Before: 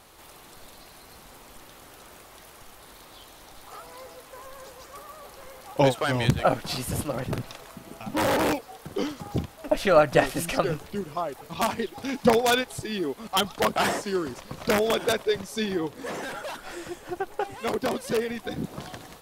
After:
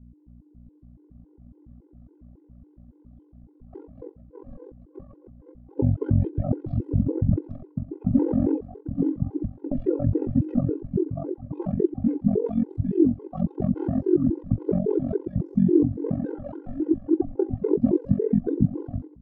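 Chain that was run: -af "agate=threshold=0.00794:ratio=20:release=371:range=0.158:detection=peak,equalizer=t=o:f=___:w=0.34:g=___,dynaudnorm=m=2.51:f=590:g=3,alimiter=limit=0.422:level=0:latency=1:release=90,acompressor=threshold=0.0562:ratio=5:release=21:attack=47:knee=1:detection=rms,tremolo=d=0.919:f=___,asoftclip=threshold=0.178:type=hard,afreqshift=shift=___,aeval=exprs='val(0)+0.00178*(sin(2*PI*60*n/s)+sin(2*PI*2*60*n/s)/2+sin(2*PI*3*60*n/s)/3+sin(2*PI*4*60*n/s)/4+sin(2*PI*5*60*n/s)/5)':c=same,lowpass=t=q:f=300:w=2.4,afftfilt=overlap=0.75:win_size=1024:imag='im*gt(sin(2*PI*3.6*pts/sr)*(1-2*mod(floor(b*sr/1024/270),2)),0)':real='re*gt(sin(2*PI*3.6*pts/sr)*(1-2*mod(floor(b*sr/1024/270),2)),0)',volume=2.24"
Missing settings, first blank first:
130, 11, 45, -26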